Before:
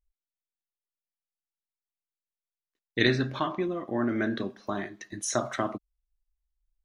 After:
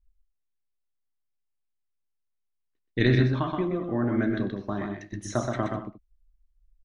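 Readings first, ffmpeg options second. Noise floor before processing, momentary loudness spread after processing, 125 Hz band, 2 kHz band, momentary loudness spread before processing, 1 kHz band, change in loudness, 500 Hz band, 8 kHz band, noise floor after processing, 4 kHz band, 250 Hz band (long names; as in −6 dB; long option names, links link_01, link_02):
below −85 dBFS, 13 LU, +9.0 dB, −1.5 dB, 11 LU, −0.5 dB, +2.5 dB, +1.5 dB, can't be measured, −78 dBFS, −4.5 dB, +3.5 dB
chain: -af "aemphasis=mode=reproduction:type=bsi,aecho=1:1:95|125|204:0.133|0.596|0.158,volume=-2dB"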